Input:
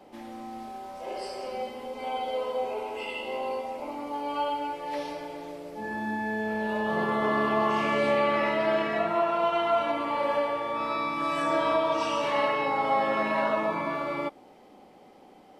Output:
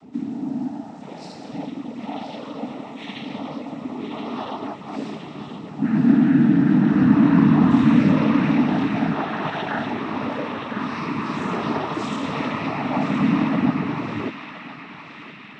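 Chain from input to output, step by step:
low shelf with overshoot 310 Hz +12 dB, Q 3
cochlear-implant simulation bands 12
on a send: feedback echo with a band-pass in the loop 1,021 ms, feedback 66%, band-pass 2,700 Hz, level −5.5 dB

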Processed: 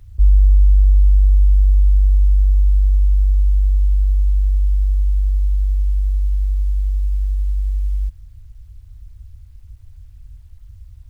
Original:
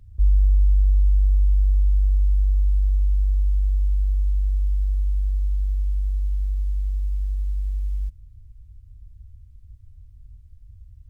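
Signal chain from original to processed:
parametric band 180 Hz −6.5 dB 0.89 octaves
bit-depth reduction 12 bits, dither none
level +6 dB

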